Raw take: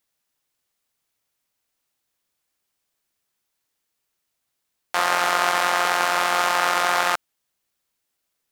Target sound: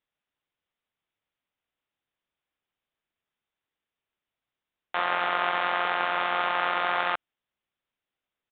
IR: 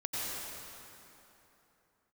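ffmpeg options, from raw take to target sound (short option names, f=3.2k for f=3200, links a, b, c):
-af "aresample=8000,aresample=44100,volume=-5.5dB"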